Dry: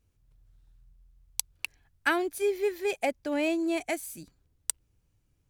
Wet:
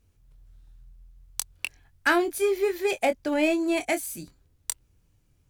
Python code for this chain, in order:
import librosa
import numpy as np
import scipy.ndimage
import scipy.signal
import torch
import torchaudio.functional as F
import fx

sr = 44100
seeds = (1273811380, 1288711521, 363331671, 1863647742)

p1 = fx.fold_sine(x, sr, drive_db=9, ceiling_db=-9.0)
p2 = x + F.gain(torch.from_numpy(p1), -6.5).numpy()
p3 = fx.doubler(p2, sr, ms=23.0, db=-8.5)
y = F.gain(torch.from_numpy(p3), -4.5).numpy()